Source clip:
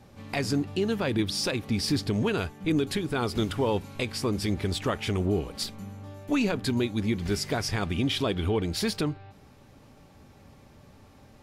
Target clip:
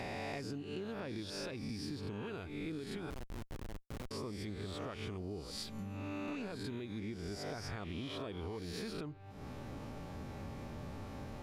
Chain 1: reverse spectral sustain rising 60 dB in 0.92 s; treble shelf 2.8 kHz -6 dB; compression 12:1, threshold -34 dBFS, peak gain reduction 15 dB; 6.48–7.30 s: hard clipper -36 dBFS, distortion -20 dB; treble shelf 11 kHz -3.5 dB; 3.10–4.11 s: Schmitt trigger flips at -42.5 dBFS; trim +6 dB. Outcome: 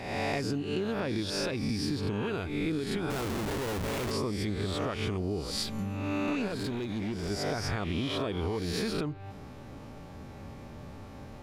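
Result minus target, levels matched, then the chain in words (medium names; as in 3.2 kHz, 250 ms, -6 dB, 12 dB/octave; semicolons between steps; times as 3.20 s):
compression: peak gain reduction -10.5 dB
reverse spectral sustain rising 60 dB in 0.92 s; treble shelf 2.8 kHz -6 dB; compression 12:1, threshold -45.5 dBFS, peak gain reduction 25.5 dB; 6.48–7.30 s: hard clipper -36 dBFS, distortion -77 dB; treble shelf 11 kHz -3.5 dB; 3.10–4.11 s: Schmitt trigger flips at -42.5 dBFS; trim +6 dB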